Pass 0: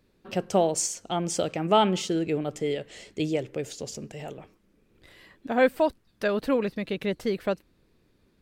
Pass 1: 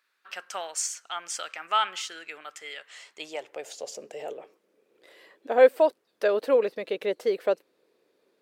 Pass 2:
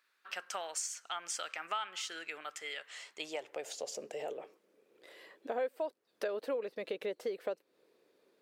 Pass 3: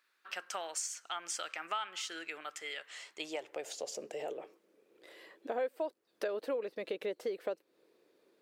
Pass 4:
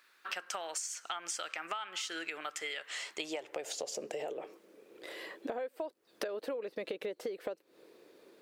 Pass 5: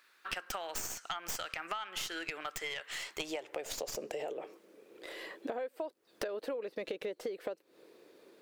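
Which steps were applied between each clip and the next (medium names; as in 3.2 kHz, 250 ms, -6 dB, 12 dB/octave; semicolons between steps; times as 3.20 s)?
high-pass sweep 1.4 kHz -> 470 Hz, 2.72–4.21 s; trim -2 dB
compression 4:1, threshold -34 dBFS, peak gain reduction 18.5 dB; trim -1.5 dB
peaking EQ 330 Hz +5 dB 0.22 oct
compression 6:1, threshold -46 dBFS, peak gain reduction 14.5 dB; trim +10 dB
tracing distortion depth 0.085 ms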